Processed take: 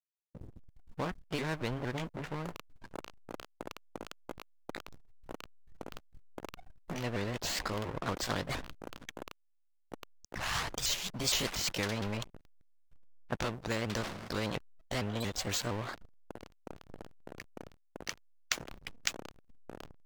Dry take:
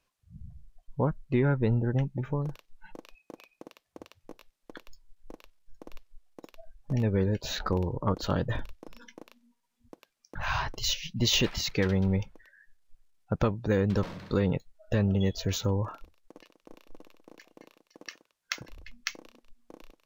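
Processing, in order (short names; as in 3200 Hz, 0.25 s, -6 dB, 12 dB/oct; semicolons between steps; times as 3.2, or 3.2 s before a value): repeated pitch sweeps +3.5 st, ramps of 0.231 s; backlash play -41.5 dBFS; spectral compressor 2:1; gain +2 dB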